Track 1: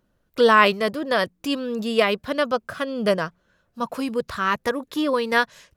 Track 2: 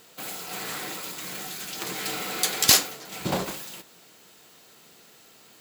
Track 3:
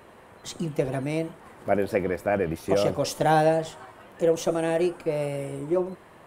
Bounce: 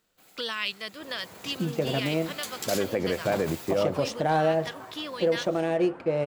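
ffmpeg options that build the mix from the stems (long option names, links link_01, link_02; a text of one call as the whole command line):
ffmpeg -i stem1.wav -i stem2.wav -i stem3.wav -filter_complex "[0:a]equalizer=frequency=2700:width=0.4:gain=14,acrossover=split=150|3000[link_01][link_02][link_03];[link_02]acompressor=threshold=-21dB:ratio=6[link_04];[link_01][link_04][link_03]amix=inputs=3:normalize=0,volume=-14.5dB[link_05];[1:a]volume=-5dB,afade=type=in:start_time=0.89:duration=0.8:silence=0.316228,afade=type=in:start_time=2.74:duration=0.27:silence=0.446684[link_06];[2:a]highpass=82,highshelf=frequency=8400:gain=-9,adynamicsmooth=sensitivity=7.5:basefreq=3400,adelay=1000,volume=1dB[link_07];[link_05][link_06][link_07]amix=inputs=3:normalize=0,alimiter=limit=-15.5dB:level=0:latency=1:release=80" out.wav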